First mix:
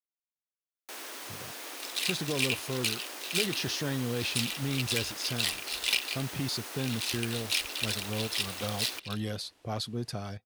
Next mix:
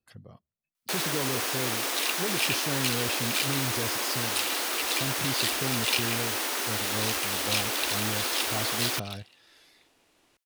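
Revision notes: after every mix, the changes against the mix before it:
speech: entry −1.15 s
first sound +12.0 dB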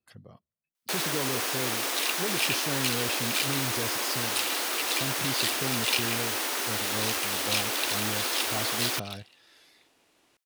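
master: add low-shelf EQ 62 Hz −10.5 dB

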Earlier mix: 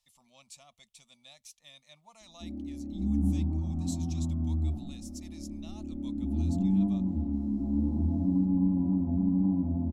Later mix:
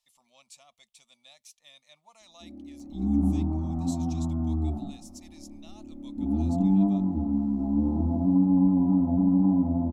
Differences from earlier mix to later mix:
second sound +11.5 dB
master: add bass and treble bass −11 dB, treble −1 dB

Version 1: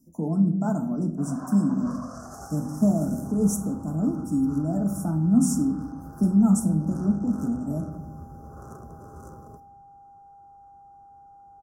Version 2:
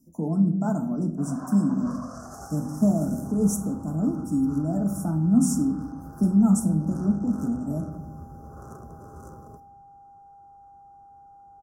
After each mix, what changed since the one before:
nothing changed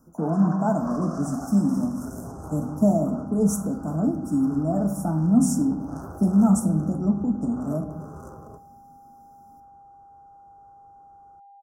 first sound: entry −1.00 s
second sound −6.5 dB
master: add parametric band 750 Hz +7 dB 1.6 octaves

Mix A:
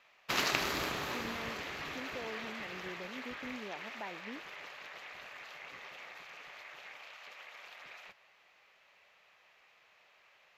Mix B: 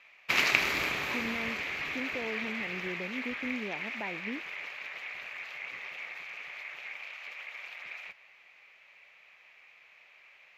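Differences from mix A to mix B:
speech: add low-shelf EQ 500 Hz +10.5 dB
master: add parametric band 2,300 Hz +12 dB 0.6 octaves

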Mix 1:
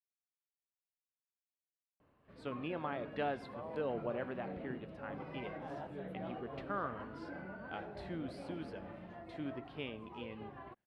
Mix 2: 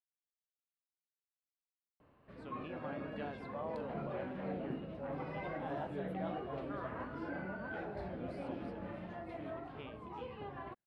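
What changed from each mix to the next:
speech −9.0 dB
background +4.5 dB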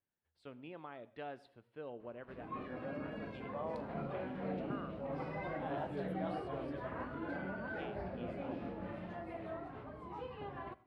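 speech: entry −2.00 s
background: send on

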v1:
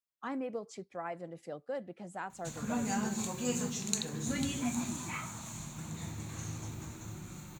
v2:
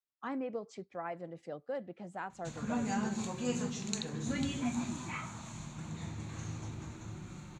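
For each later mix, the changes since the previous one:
master: add high-frequency loss of the air 83 metres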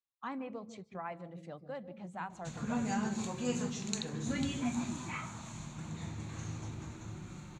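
speech: send on

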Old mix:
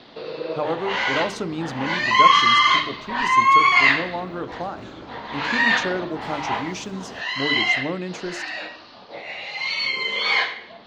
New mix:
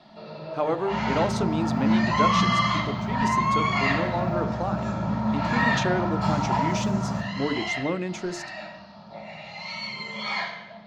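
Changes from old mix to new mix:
first sound −11.0 dB
reverb: on, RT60 0.95 s

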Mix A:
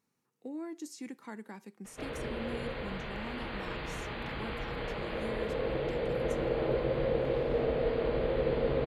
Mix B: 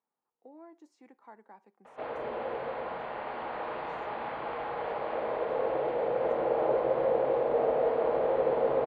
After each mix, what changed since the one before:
background +10.5 dB
master: add resonant band-pass 790 Hz, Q 2.1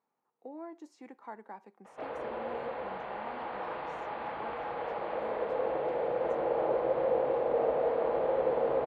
speech +7.0 dB
reverb: off

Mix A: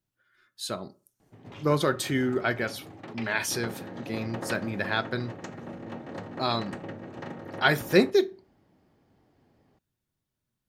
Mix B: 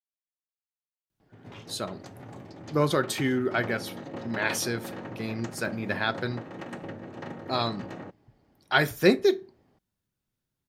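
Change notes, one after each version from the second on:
speech: entry +1.10 s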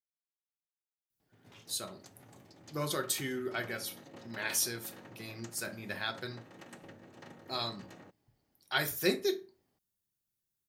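speech: send +9.0 dB
master: add first-order pre-emphasis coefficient 0.8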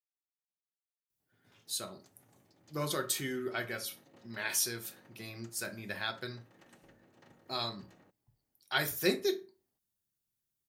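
background −9.5 dB

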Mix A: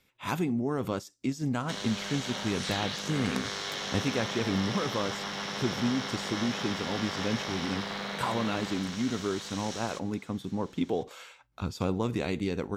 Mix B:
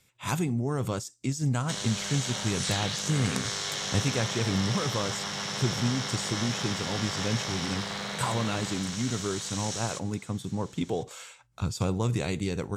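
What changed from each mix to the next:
master: add octave-band graphic EQ 125/250/8,000 Hz +9/−4/+12 dB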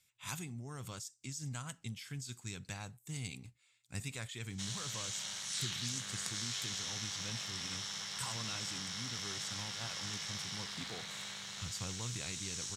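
background: entry +2.90 s
master: add guitar amp tone stack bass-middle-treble 5-5-5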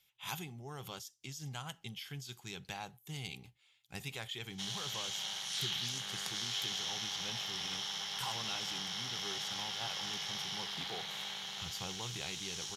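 master: add thirty-one-band graphic EQ 100 Hz −12 dB, 250 Hz −7 dB, 400 Hz +5 dB, 800 Hz +10 dB, 3,150 Hz +9 dB, 8,000 Hz −12 dB, 12,500 Hz +7 dB

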